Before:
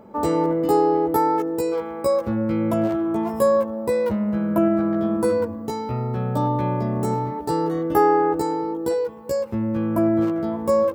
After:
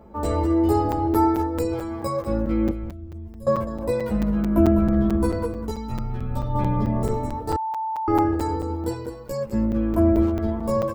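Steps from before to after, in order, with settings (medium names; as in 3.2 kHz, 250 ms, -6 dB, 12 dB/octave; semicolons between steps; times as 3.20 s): octave divider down 2 oct, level 0 dB; 2.70–3.47 s: amplifier tone stack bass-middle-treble 10-0-1; delay 203 ms -10.5 dB; chorus voices 6, 0.27 Hz, delay 12 ms, depth 3.3 ms; 5.71–6.55 s: peaking EQ 540 Hz -7 dB 2.6 oct; 7.56–8.08 s: bleep 884 Hz -24 dBFS; crackling interface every 0.22 s, samples 256, zero, from 0.92 s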